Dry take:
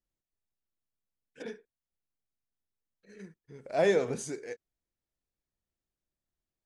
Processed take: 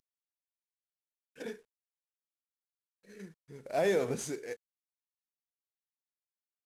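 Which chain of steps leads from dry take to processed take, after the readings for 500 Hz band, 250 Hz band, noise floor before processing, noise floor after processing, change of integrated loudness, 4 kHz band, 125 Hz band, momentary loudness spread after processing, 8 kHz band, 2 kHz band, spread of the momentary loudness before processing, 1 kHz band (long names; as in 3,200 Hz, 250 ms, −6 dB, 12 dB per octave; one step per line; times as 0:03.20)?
−3.0 dB, −1.5 dB, below −85 dBFS, below −85 dBFS, −4.0 dB, −1.5 dB, −1.5 dB, 22 LU, 0.0 dB, −2.5 dB, 19 LU, −1.5 dB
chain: variable-slope delta modulation 64 kbit/s
brickwall limiter −20 dBFS, peak gain reduction 5 dB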